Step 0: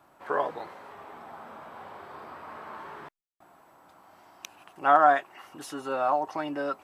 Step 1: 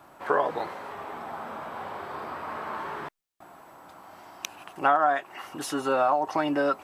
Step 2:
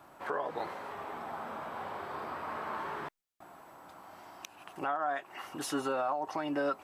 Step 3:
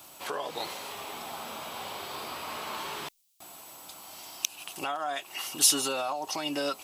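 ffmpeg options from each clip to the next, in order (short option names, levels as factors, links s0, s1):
-af "acompressor=threshold=0.0447:ratio=5,volume=2.37"
-af "alimiter=limit=0.112:level=0:latency=1:release=306,volume=0.668"
-af "aexciter=amount=7.1:drive=5.3:freq=2500"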